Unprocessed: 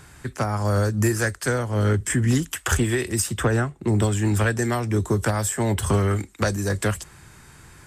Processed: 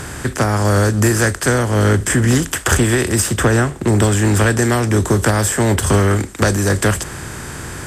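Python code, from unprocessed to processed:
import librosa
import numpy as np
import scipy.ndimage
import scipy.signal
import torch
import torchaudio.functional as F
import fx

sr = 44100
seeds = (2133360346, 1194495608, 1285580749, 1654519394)

y = fx.bin_compress(x, sr, power=0.6)
y = fx.band_widen(y, sr, depth_pct=40, at=(5.8, 6.35))
y = y * 10.0 ** (4.5 / 20.0)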